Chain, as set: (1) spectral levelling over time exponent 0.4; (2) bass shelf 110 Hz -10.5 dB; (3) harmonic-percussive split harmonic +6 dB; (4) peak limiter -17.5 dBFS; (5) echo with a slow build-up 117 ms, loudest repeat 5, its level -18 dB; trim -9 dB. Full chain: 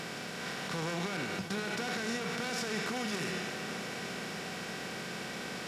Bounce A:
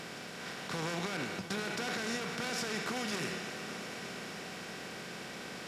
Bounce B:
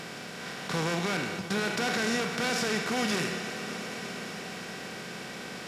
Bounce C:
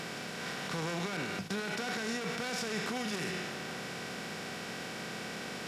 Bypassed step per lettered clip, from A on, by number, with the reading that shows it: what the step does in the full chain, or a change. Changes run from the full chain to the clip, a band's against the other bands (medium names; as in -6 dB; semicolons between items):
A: 3, momentary loudness spread change +3 LU; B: 4, mean gain reduction 2.5 dB; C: 5, echo-to-direct -8.5 dB to none